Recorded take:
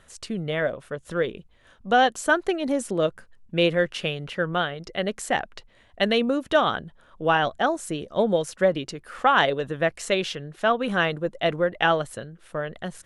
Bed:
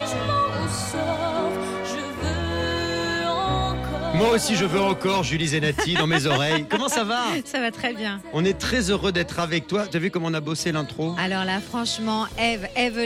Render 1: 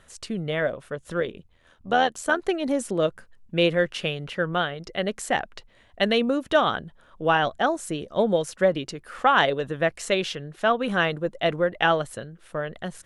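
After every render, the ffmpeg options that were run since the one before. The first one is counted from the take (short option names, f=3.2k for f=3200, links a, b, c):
-filter_complex "[0:a]asettb=1/sr,asplit=3[a][b][c];[a]atrim=end=1.204[d];[b]atrim=start=1.2:end=2.43,asetpts=PTS-STARTPTS,afade=t=in:d=0.004:c=qsin,afade=t=out:st=1.226:d=0.004:c=qsin,tremolo=f=82:d=0.571[e];[c]atrim=start=2.426[f];[d][e]acrossfade=d=0.004:c1=hsin:c2=qsin[g];[g][f]acrossfade=d=0.004:c1=qsin:c2=hsin"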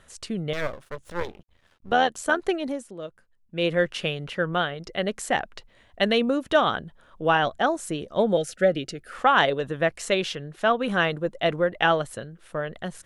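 -filter_complex "[0:a]asettb=1/sr,asplit=3[a][b][c];[a]atrim=end=0.534[d];[b]atrim=start=0.53:end=1.92,asetpts=PTS-STARTPTS,afade=t=in:d=0.004:c=qsin,afade=t=out:st=1.386:d=0.004:c=qsin,aeval=exprs='max(val(0),0)':c=same[e];[c]atrim=start=1.916[f];[d][e]acrossfade=d=0.004:c1=hsin:c2=qsin[g];[g][f]acrossfade=d=0.004:c1=qsin:c2=hsin,asettb=1/sr,asplit=3[h][i][j];[h]atrim=end=8.374[k];[i]atrim=start=8.37:end=9.13,asetpts=PTS-STARTPTS,afade=t=in:d=0.004:c=qsin,afade=t=out:st=0.756:d=0.004:c=qsin,asuperstop=centerf=990:order=20:qfactor=2.2[l];[j]atrim=start=9.126[m];[k][l]acrossfade=d=0.004:c1=hsin:c2=qsin[n];[n][m]acrossfade=d=0.004:c1=qsin:c2=hsin,asplit=3[o][p][q];[o]atrim=end=2.85,asetpts=PTS-STARTPTS,afade=t=out:st=2.54:d=0.31:silence=0.211349[r];[p]atrim=start=2.85:end=3.47,asetpts=PTS-STARTPTS,volume=-13.5dB[s];[q]atrim=start=3.47,asetpts=PTS-STARTPTS,afade=t=in:d=0.31:silence=0.211349[t];[r][s][t]concat=n=3:v=0:a=1"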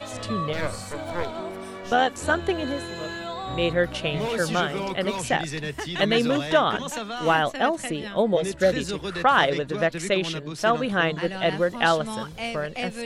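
-filter_complex "[1:a]volume=-9dB[a];[0:a][a]amix=inputs=2:normalize=0"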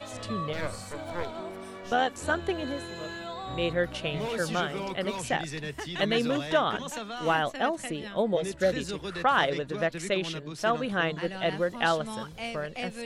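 -af "volume=-5dB"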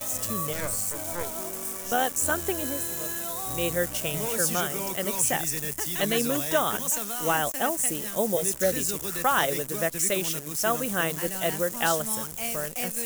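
-af "acrusher=bits=8:dc=4:mix=0:aa=0.000001,aexciter=amount=6.2:drive=6.3:freq=5.9k"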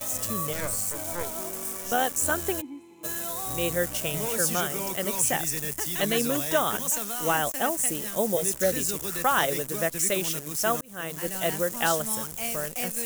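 -filter_complex "[0:a]asplit=3[a][b][c];[a]afade=t=out:st=2.6:d=0.02[d];[b]asplit=3[e][f][g];[e]bandpass=f=300:t=q:w=8,volume=0dB[h];[f]bandpass=f=870:t=q:w=8,volume=-6dB[i];[g]bandpass=f=2.24k:t=q:w=8,volume=-9dB[j];[h][i][j]amix=inputs=3:normalize=0,afade=t=in:st=2.6:d=0.02,afade=t=out:st=3.03:d=0.02[k];[c]afade=t=in:st=3.03:d=0.02[l];[d][k][l]amix=inputs=3:normalize=0,asplit=2[m][n];[m]atrim=end=10.81,asetpts=PTS-STARTPTS,afade=t=out:st=10.806:d=0.004:c=hsin[o];[n]atrim=start=10.81,asetpts=PTS-STARTPTS,afade=t=in:d=0.55[p];[o][p]concat=n=2:v=0:a=1"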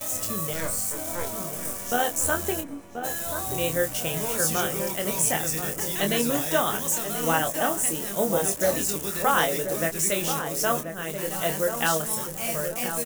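-filter_complex "[0:a]asplit=2[a][b];[b]adelay=25,volume=-6dB[c];[a][c]amix=inputs=2:normalize=0,asplit=2[d][e];[e]adelay=1034,lowpass=f=1.2k:p=1,volume=-7dB,asplit=2[f][g];[g]adelay=1034,lowpass=f=1.2k:p=1,volume=0.46,asplit=2[h][i];[i]adelay=1034,lowpass=f=1.2k:p=1,volume=0.46,asplit=2[j][k];[k]adelay=1034,lowpass=f=1.2k:p=1,volume=0.46,asplit=2[l][m];[m]adelay=1034,lowpass=f=1.2k:p=1,volume=0.46[n];[d][f][h][j][l][n]amix=inputs=6:normalize=0"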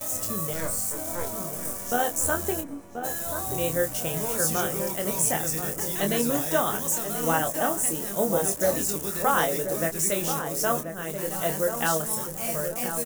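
-af "equalizer=f=2.9k:t=o:w=1.4:g=-5.5"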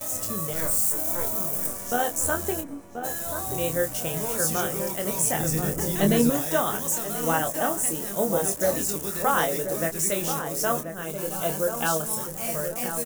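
-filter_complex "[0:a]asettb=1/sr,asplit=3[a][b][c];[a]atrim=end=0.564[d];[b]atrim=start=0.56:end=1.67,asetpts=PTS-STARTPTS,afade=t=in:d=0.004:c=qsin,afade=t=out:st=1.106:d=0.004:c=qsin,highshelf=f=11k:g=10[e];[c]atrim=start=1.666[f];[d][e]acrossfade=d=0.004:c1=hsin:c2=qsin[g];[g][f]acrossfade=d=0.004:c1=qsin:c2=hsin,asettb=1/sr,asplit=3[h][i][j];[h]atrim=end=5.384[k];[i]atrim=start=5.38:end=6.3,asetpts=PTS-STARTPTS,afade=t=in:d=0.004:c=qsin,afade=t=out:st=0.916:d=0.004:c=qsin,lowshelf=f=390:g=10[l];[j]atrim=start=6.296[m];[k][l]acrossfade=d=0.004:c1=hsin:c2=qsin[n];[n][m]acrossfade=d=0.004:c1=qsin:c2=hsin,asettb=1/sr,asplit=3[o][p][q];[o]atrim=end=11.044[r];[p]atrim=start=11.04:end=12.2,asetpts=PTS-STARTPTS,afade=t=in:d=0.004:c=qsin,afade=t=out:st=1.156:d=0.004:c=qsin,asuperstop=centerf=1900:order=4:qfactor=6.3[s];[q]atrim=start=12.196[t];[r][s]acrossfade=d=0.004:c1=hsin:c2=qsin[u];[u][t]acrossfade=d=0.004:c1=qsin:c2=hsin"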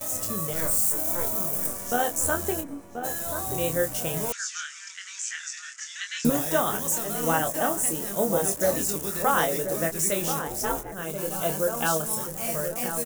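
-filter_complex "[0:a]asettb=1/sr,asplit=3[a][b][c];[a]atrim=end=4.324[d];[b]atrim=start=4.32:end=6.25,asetpts=PTS-STARTPTS,afade=t=in:d=0.004:c=qsin,afade=t=out:st=1.926:d=0.004:c=qsin,asuperpass=centerf=3300:order=12:qfactor=0.58[e];[c]atrim=start=6.246[f];[d][e]acrossfade=d=0.004:c1=hsin:c2=qsin[g];[g][f]acrossfade=d=0.004:c1=qsin:c2=hsin,asettb=1/sr,asplit=3[h][i][j];[h]atrim=end=10.474[k];[i]atrim=start=10.47:end=10.92,asetpts=PTS-STARTPTS,afade=t=in:d=0.004:c=qsin,afade=t=out:st=0.446:d=0.004:c=qsin,aeval=exprs='val(0)*sin(2*PI*200*n/s)':c=same[l];[j]atrim=start=10.916[m];[k][l]acrossfade=d=0.004:c1=hsin:c2=qsin[n];[n][m]acrossfade=d=0.004:c1=qsin:c2=hsin"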